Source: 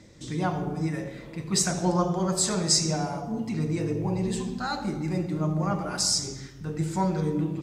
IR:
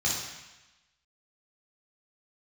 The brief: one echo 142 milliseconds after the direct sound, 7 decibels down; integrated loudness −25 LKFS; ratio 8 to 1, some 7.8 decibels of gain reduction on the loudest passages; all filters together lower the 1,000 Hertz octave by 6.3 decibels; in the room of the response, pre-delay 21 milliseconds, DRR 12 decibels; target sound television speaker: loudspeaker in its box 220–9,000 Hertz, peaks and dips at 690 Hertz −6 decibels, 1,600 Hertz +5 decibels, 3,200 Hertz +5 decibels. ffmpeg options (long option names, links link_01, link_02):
-filter_complex "[0:a]equalizer=frequency=1000:width_type=o:gain=-6.5,acompressor=threshold=-27dB:ratio=8,aecho=1:1:142:0.447,asplit=2[link_01][link_02];[1:a]atrim=start_sample=2205,adelay=21[link_03];[link_02][link_03]afir=irnorm=-1:irlink=0,volume=-21.5dB[link_04];[link_01][link_04]amix=inputs=2:normalize=0,highpass=frequency=220:width=0.5412,highpass=frequency=220:width=1.3066,equalizer=frequency=690:width_type=q:width=4:gain=-6,equalizer=frequency=1600:width_type=q:width=4:gain=5,equalizer=frequency=3200:width_type=q:width=4:gain=5,lowpass=frequency=9000:width=0.5412,lowpass=frequency=9000:width=1.3066,volume=8dB"